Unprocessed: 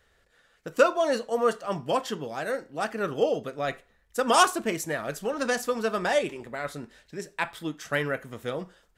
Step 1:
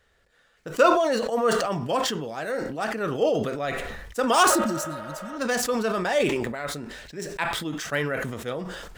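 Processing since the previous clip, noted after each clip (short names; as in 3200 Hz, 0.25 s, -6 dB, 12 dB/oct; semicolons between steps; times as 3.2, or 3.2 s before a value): median filter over 3 samples; spectral repair 4.52–5.34, 380–3700 Hz after; sustainer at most 36 dB/s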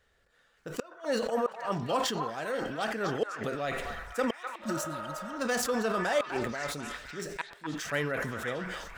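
flipped gate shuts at -13 dBFS, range -30 dB; on a send: delay with a stepping band-pass 0.251 s, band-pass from 1100 Hz, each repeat 0.7 oct, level -2.5 dB; on the sum: gain -4.5 dB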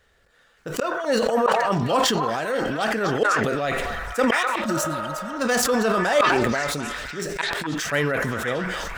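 sustainer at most 20 dB/s; gain +7.5 dB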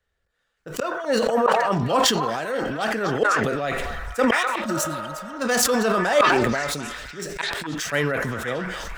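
three-band expander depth 40%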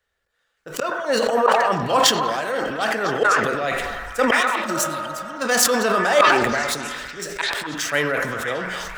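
low shelf 290 Hz -10 dB; on a send: dark delay 99 ms, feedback 58%, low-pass 2400 Hz, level -11.5 dB; on the sum: gain +3.5 dB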